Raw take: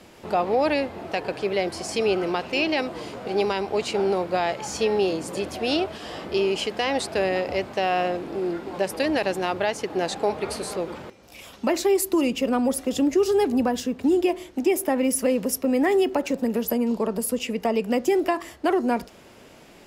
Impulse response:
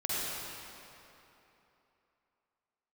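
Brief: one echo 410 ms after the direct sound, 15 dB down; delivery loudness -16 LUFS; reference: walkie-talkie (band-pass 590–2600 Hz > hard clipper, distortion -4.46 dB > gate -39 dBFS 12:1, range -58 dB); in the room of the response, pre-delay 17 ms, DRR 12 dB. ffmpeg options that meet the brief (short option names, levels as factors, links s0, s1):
-filter_complex "[0:a]aecho=1:1:410:0.178,asplit=2[s0][s1];[1:a]atrim=start_sample=2205,adelay=17[s2];[s1][s2]afir=irnorm=-1:irlink=0,volume=0.106[s3];[s0][s3]amix=inputs=2:normalize=0,highpass=590,lowpass=2600,asoftclip=type=hard:threshold=0.0224,agate=range=0.00126:threshold=0.0112:ratio=12,volume=10"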